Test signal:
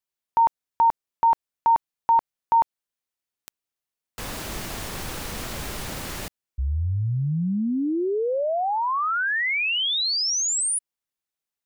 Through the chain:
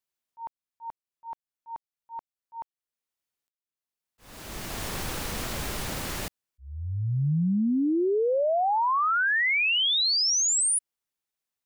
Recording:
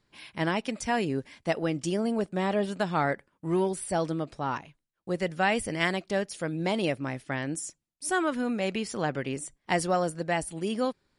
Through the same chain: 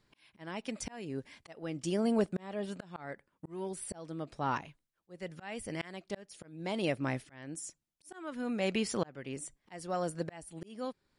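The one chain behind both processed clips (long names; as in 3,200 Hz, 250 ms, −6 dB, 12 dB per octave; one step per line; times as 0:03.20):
volume swells 704 ms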